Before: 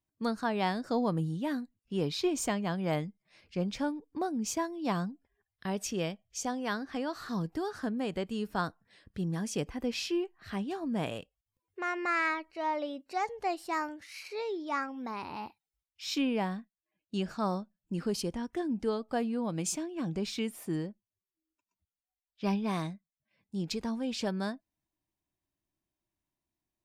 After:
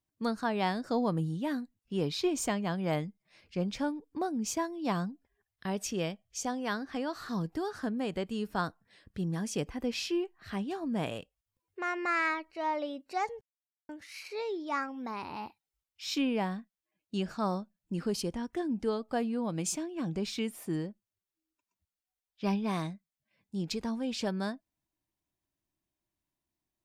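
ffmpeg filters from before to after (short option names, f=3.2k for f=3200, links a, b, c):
-filter_complex "[0:a]asplit=3[a][b][c];[a]atrim=end=13.41,asetpts=PTS-STARTPTS,afade=t=out:st=13.406:d=0.004:c=hsin[d];[b]atrim=start=13.41:end=13.89,asetpts=PTS-STARTPTS,volume=0[e];[c]atrim=start=13.89,asetpts=PTS-STARTPTS,afade=t=in:d=0.004:c=hsin[f];[d][e][f]concat=n=3:v=0:a=1"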